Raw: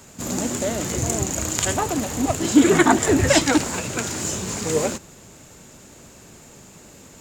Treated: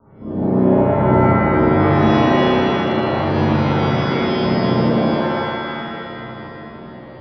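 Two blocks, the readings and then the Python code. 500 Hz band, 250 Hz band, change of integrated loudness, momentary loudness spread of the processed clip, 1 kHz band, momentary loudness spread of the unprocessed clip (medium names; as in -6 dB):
+6.5 dB, +5.5 dB, +4.5 dB, 17 LU, +7.5 dB, 10 LU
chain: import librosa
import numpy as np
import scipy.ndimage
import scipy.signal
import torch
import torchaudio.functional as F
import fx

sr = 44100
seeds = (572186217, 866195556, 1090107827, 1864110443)

p1 = fx.spec_gate(x, sr, threshold_db=-15, keep='strong')
p2 = scipy.signal.sosfilt(scipy.signal.butter(12, 1400.0, 'lowpass', fs=sr, output='sos'), p1)
p3 = fx.over_compress(p2, sr, threshold_db=-23.0, ratio=-0.5)
p4 = p3 + fx.room_flutter(p3, sr, wall_m=5.5, rt60_s=1.2, dry=0)
p5 = fx.rev_shimmer(p4, sr, seeds[0], rt60_s=2.4, semitones=7, shimmer_db=-2, drr_db=-9.5)
y = p5 * 10.0 ** (-9.5 / 20.0)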